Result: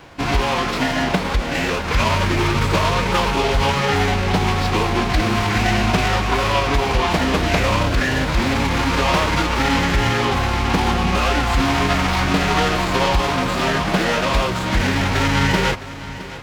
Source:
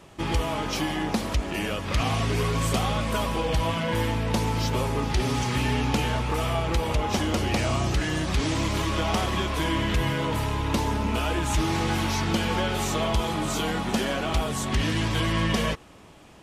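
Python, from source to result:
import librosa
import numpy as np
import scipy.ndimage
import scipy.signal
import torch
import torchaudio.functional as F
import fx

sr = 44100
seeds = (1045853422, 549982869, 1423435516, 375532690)

y = scipy.signal.medfilt(x, 15)
y = fx.peak_eq(y, sr, hz=3100.0, db=13.0, octaves=2.6)
y = fx.pitch_keep_formants(y, sr, semitones=-3.0)
y = fx.echo_feedback(y, sr, ms=662, feedback_pct=53, wet_db=-15.5)
y = F.gain(torch.from_numpy(y), 6.0).numpy()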